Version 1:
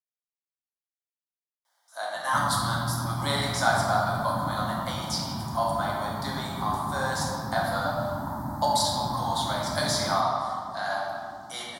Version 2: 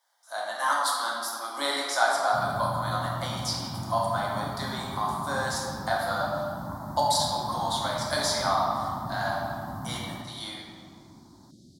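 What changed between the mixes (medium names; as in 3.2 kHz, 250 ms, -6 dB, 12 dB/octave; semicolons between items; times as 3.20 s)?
speech: entry -1.65 s; first sound -3.5 dB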